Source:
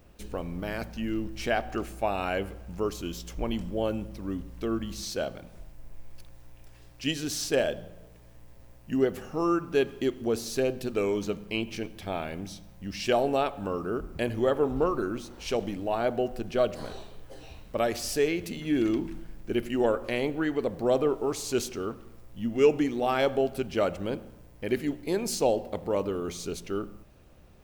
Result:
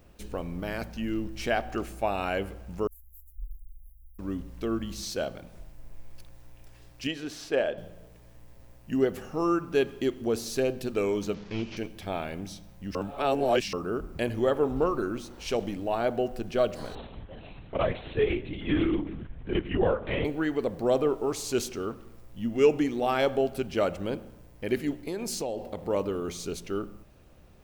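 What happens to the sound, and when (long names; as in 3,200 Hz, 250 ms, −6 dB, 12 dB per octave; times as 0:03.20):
0:02.87–0:04.19: inverse Chebyshev band-stop filter 140–4,600 Hz, stop band 60 dB
0:07.07–0:07.78: bass and treble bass −9 dB, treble −15 dB
0:11.34–0:11.77: linear delta modulator 32 kbit/s, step −44.5 dBFS
0:12.95–0:13.73: reverse
0:16.95–0:20.25: linear-prediction vocoder at 8 kHz whisper
0:24.91–0:25.81: downward compressor 4 to 1, threshold −29 dBFS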